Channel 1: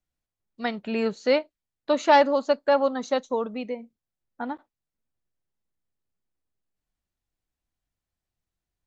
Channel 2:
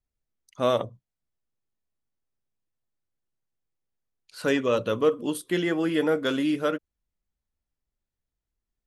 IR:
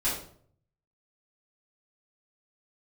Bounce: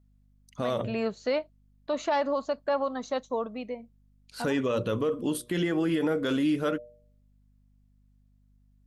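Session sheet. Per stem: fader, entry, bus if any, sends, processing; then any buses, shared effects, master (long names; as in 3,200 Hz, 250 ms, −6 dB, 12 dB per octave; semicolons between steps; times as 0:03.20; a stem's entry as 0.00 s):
−4.5 dB, 0.00 s, no send, mains hum 50 Hz, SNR 30 dB; hollow resonant body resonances 660/1,100 Hz, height 8 dB
0.0 dB, 0.00 s, no send, low-shelf EQ 210 Hz +7.5 dB; hum removal 119.9 Hz, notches 5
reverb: not used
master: brickwall limiter −19 dBFS, peak gain reduction 11 dB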